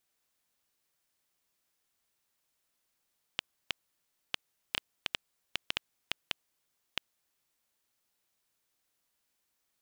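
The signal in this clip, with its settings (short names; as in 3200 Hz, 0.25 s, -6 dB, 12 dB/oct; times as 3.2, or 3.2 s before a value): random clicks 3/s -11 dBFS 4.22 s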